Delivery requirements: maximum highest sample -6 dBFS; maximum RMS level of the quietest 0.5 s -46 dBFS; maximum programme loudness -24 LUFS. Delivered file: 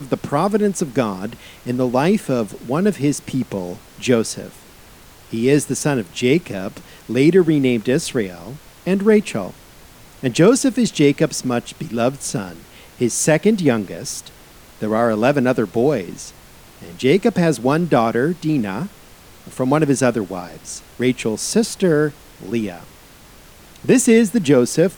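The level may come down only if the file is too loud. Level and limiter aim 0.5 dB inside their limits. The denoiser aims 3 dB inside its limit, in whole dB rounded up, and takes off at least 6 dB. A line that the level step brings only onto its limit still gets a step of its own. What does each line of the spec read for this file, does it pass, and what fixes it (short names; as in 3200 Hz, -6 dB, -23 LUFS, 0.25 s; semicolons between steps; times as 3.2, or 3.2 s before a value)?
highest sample -2.5 dBFS: fail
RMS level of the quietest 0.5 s -44 dBFS: fail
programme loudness -18.5 LUFS: fail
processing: gain -6 dB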